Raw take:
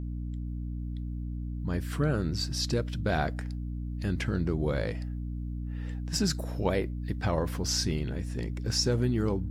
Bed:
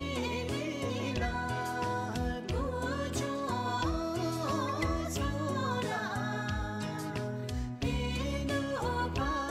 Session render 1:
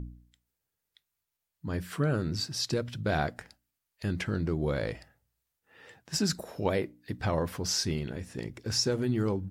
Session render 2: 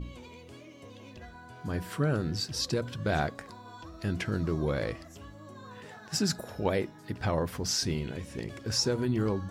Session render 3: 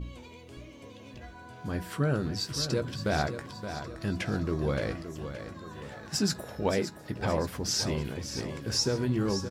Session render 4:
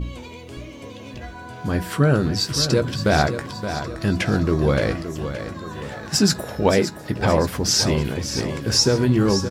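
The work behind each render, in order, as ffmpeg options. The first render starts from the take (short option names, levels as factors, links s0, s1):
-af "bandreject=f=60:t=h:w=4,bandreject=f=120:t=h:w=4,bandreject=f=180:t=h:w=4,bandreject=f=240:t=h:w=4,bandreject=f=300:t=h:w=4"
-filter_complex "[1:a]volume=0.188[s0];[0:a][s0]amix=inputs=2:normalize=0"
-filter_complex "[0:a]asplit=2[s0][s1];[s1]adelay=15,volume=0.266[s2];[s0][s2]amix=inputs=2:normalize=0,asplit=2[s3][s4];[s4]aecho=0:1:571|1142|1713|2284|2855:0.316|0.152|0.0729|0.035|0.0168[s5];[s3][s5]amix=inputs=2:normalize=0"
-af "volume=3.35"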